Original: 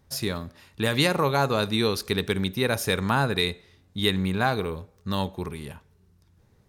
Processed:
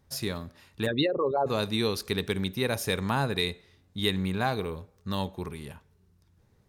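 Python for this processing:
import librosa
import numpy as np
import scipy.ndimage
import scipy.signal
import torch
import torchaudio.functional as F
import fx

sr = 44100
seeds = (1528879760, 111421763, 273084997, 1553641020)

y = fx.envelope_sharpen(x, sr, power=3.0, at=(0.85, 1.46), fade=0.02)
y = fx.dynamic_eq(y, sr, hz=1400.0, q=3.5, threshold_db=-40.0, ratio=4.0, max_db=-4)
y = F.gain(torch.from_numpy(y), -3.5).numpy()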